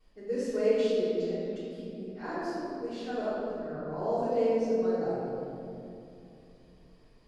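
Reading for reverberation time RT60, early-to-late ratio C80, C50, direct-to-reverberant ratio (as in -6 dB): 2.7 s, -1.5 dB, -4.0 dB, -16.0 dB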